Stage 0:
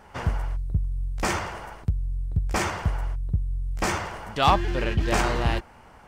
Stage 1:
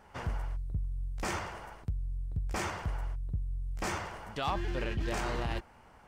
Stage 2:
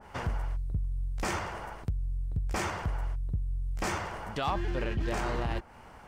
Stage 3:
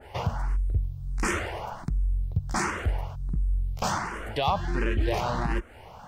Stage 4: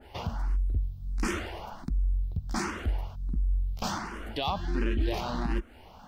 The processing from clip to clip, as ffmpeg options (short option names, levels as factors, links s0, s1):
-af "alimiter=limit=0.141:level=0:latency=1:release=20,volume=0.422"
-filter_complex "[0:a]asplit=2[s0][s1];[s1]acompressor=threshold=0.00794:ratio=6,volume=1.19[s2];[s0][s2]amix=inputs=2:normalize=0,adynamicequalizer=threshold=0.00562:dfrequency=2000:dqfactor=0.7:tfrequency=2000:tqfactor=0.7:attack=5:release=100:ratio=0.375:range=2.5:mode=cutabove:tftype=highshelf"
-filter_complex "[0:a]asplit=2[s0][s1];[s1]afreqshift=1.4[s2];[s0][s2]amix=inputs=2:normalize=1,volume=2.37"
-af "equalizer=f=125:t=o:w=1:g=-11,equalizer=f=250:t=o:w=1:g=6,equalizer=f=500:t=o:w=1:g=-7,equalizer=f=1000:t=o:w=1:g=-4,equalizer=f=2000:t=o:w=1:g=-6,equalizer=f=4000:t=o:w=1:g=3,equalizer=f=8000:t=o:w=1:g=-8"